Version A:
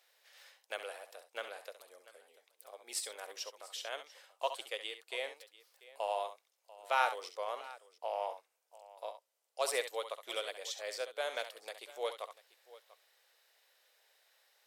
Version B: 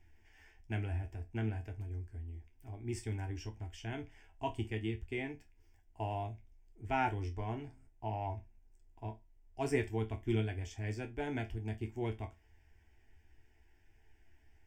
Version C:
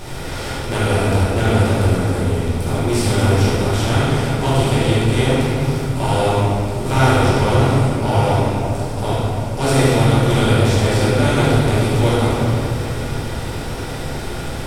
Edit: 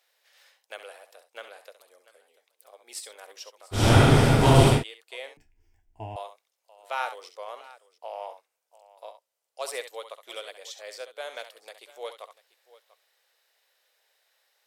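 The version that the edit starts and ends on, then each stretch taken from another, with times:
A
3.79–4.76 s: from C, crossfade 0.16 s
5.37–6.16 s: from B

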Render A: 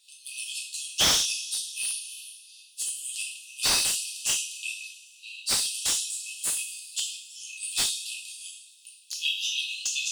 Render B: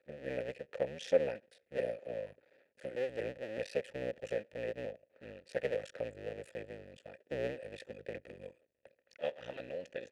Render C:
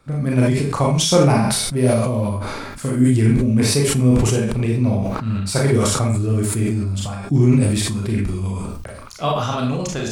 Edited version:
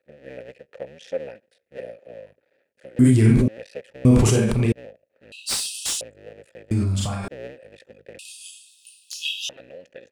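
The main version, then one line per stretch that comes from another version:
B
2.99–3.48 s: from C
4.05–4.72 s: from C
5.32–6.01 s: from A
6.71–7.28 s: from C
8.19–9.49 s: from A

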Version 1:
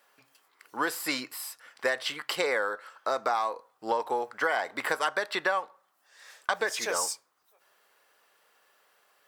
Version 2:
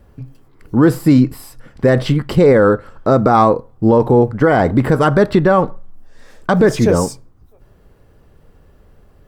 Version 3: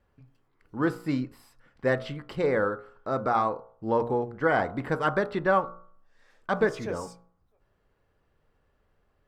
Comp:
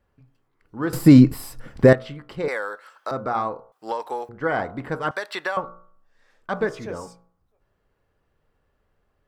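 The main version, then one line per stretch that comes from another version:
3
0.93–1.93 s: from 2
2.48–3.11 s: from 1
3.72–4.29 s: from 1
5.11–5.57 s: from 1

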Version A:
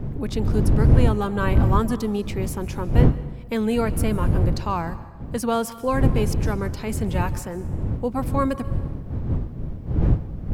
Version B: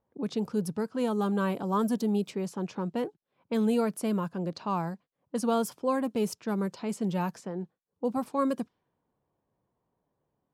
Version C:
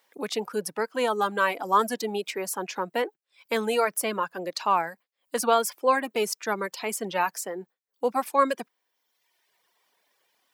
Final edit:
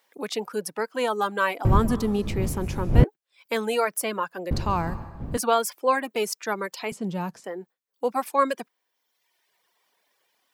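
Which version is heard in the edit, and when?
C
1.65–3.04 s: from A
4.51–5.37 s: from A
6.92–7.44 s: from B

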